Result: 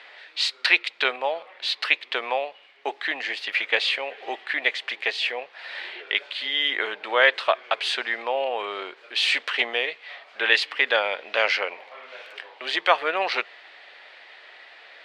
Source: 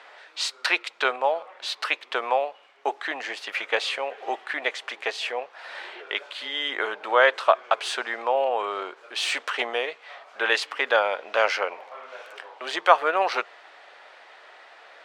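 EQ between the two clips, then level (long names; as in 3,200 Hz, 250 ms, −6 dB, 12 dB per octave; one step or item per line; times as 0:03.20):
low-shelf EQ 390 Hz +8 dB
flat-topped bell 2,900 Hz +10 dB
−5.0 dB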